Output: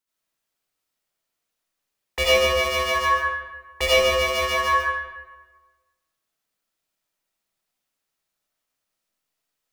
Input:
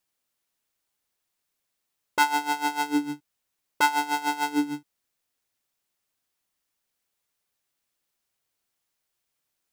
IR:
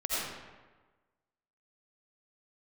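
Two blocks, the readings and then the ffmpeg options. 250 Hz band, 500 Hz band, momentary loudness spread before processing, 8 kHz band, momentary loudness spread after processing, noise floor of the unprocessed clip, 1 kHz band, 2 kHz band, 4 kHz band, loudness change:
−12.5 dB, +20.0 dB, 10 LU, +5.0 dB, 13 LU, −81 dBFS, +2.0 dB, +6.5 dB, +11.5 dB, +5.5 dB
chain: -filter_complex "[0:a]asplit=2[link_01][link_02];[link_02]aeval=exprs='val(0)*gte(abs(val(0)),0.0376)':channel_layout=same,volume=-3dB[link_03];[link_01][link_03]amix=inputs=2:normalize=0,aeval=exprs='val(0)*sin(2*PI*1400*n/s)':channel_layout=same[link_04];[1:a]atrim=start_sample=2205[link_05];[link_04][link_05]afir=irnorm=-1:irlink=0,volume=-3.5dB"

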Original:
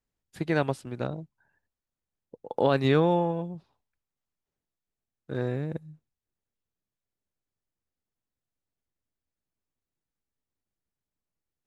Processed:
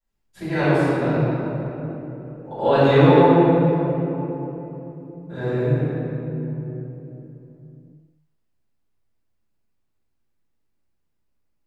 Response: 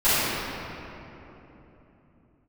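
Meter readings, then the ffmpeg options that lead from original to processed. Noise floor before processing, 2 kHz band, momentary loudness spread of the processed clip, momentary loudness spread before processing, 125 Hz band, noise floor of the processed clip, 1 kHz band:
below −85 dBFS, +9.0 dB, 22 LU, 17 LU, +11.5 dB, −70 dBFS, +10.5 dB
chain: -filter_complex "[1:a]atrim=start_sample=2205[link_01];[0:a][link_01]afir=irnorm=-1:irlink=0,volume=-11.5dB"

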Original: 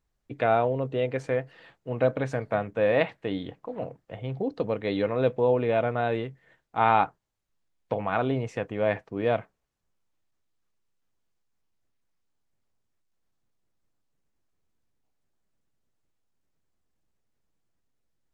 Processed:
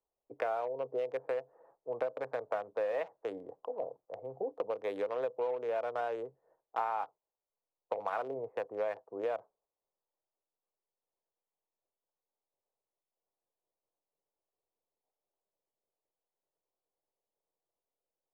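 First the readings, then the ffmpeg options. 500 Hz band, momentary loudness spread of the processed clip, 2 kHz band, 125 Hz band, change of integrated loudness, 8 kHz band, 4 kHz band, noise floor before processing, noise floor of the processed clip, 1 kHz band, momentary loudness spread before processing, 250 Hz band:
−8.5 dB, 8 LU, −12.5 dB, −28.0 dB, −10.0 dB, can't be measured, below −15 dB, −78 dBFS, below −85 dBFS, −10.0 dB, 13 LU, −18.5 dB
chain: -filter_complex "[0:a]equalizer=frequency=250:width_type=o:width=1:gain=-8,equalizer=frequency=500:width_type=o:width=1:gain=6,equalizer=frequency=1000:width_type=o:width=1:gain=7,acrossover=split=130|940[link_01][link_02][link_03];[link_03]acrusher=bits=4:mix=0:aa=0.5[link_04];[link_01][link_02][link_04]amix=inputs=3:normalize=0,acompressor=threshold=-24dB:ratio=10,acrossover=split=270 3200:gain=0.112 1 0.141[link_05][link_06][link_07];[link_05][link_06][link_07]amix=inputs=3:normalize=0,volume=-6dB"

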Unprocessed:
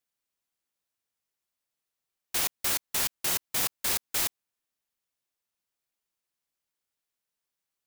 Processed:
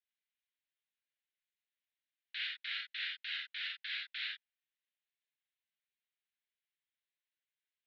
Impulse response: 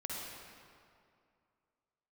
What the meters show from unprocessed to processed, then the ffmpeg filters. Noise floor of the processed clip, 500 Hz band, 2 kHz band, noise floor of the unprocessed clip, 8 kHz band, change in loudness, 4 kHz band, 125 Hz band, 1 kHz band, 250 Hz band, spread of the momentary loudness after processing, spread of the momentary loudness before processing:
below −85 dBFS, below −40 dB, −2.5 dB, below −85 dBFS, below −40 dB, −12.0 dB, −5.0 dB, below −40 dB, −20.0 dB, below −40 dB, 3 LU, 2 LU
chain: -filter_complex "[0:a]asuperpass=centerf=2500:order=12:qfactor=0.99[link_01];[1:a]atrim=start_sample=2205,afade=type=out:start_time=0.19:duration=0.01,atrim=end_sample=8820,asetrate=66150,aresample=44100[link_02];[link_01][link_02]afir=irnorm=-1:irlink=0,volume=2dB"

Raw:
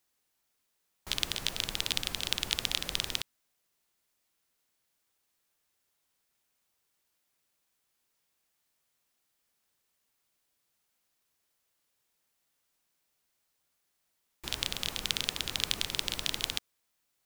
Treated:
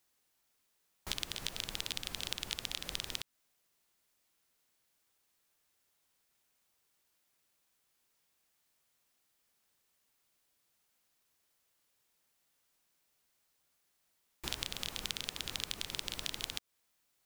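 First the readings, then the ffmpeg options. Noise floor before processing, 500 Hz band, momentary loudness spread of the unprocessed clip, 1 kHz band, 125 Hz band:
−79 dBFS, −5.5 dB, 6 LU, −5.5 dB, −5.5 dB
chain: -af "acompressor=threshold=-35dB:ratio=4,volume=1dB"

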